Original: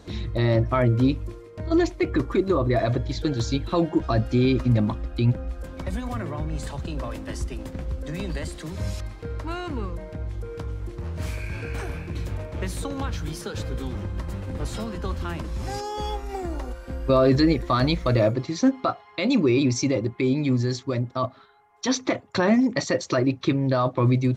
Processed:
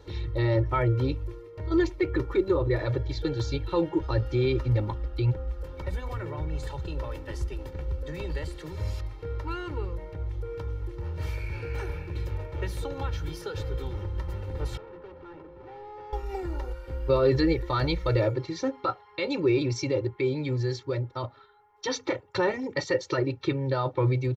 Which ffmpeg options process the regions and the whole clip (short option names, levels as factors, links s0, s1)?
-filter_complex "[0:a]asettb=1/sr,asplit=3[s0][s1][s2];[s0]atrim=end=14.774[s3];[s1]atrim=start=14.77:end=16.13,asetpts=PTS-STARTPTS,afade=t=in:d=0.004:c=qsin,afade=t=out:st=1.356:d=0.004:c=qsin,highpass=250,lowpass=5700,asoftclip=type=hard:threshold=0.0133,adynamicsmooth=sensitivity=3.5:basefreq=690[s4];[s2]atrim=start=16.126[s5];[s3][s4]acrossfade=d=0.004:c1=hsin:c2=qsin[s6];[s6][s5]acrossfade=d=0.004:c1=qsin:c2=hsin,equalizer=f=8400:t=o:w=0.91:g=-10,aecho=1:1:2.2:0.99,volume=0.501"